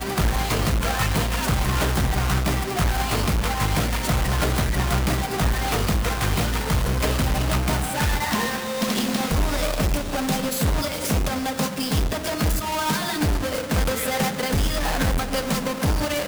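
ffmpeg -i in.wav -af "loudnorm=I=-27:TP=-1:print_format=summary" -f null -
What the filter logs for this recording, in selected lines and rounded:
Input Integrated:    -23.3 LUFS
Input True Peak:     -12.7 dBTP
Input LRA:             1.1 LU
Input Threshold:     -33.3 LUFS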